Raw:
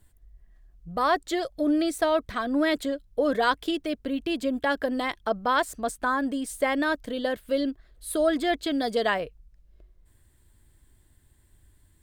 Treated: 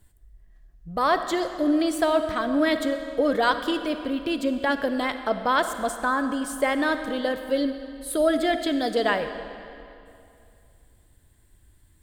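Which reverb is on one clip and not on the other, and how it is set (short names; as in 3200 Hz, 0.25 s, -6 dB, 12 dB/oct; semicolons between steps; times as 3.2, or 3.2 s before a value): digital reverb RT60 2.6 s, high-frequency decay 0.85×, pre-delay 10 ms, DRR 8.5 dB; gain +1.5 dB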